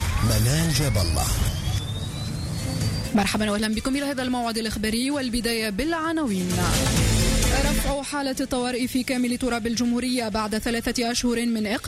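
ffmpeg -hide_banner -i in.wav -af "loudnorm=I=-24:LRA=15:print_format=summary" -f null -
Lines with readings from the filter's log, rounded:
Input Integrated:    -23.9 LUFS
Input True Peak:     -11.1 dBTP
Input LRA:             1.9 LU
Input Threshold:     -33.9 LUFS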